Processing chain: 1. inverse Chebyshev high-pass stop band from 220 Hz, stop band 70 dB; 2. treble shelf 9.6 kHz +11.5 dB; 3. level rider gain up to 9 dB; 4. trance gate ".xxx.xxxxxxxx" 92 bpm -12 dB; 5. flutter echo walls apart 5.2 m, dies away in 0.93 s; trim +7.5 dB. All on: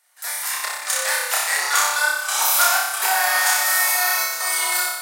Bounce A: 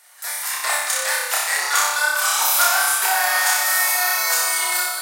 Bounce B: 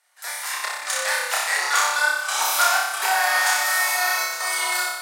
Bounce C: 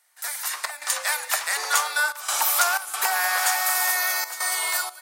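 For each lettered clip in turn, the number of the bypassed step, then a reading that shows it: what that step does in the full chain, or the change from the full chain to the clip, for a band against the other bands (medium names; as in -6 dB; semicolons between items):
4, momentary loudness spread change -2 LU; 2, 8 kHz band -4.0 dB; 5, echo-to-direct 2.5 dB to none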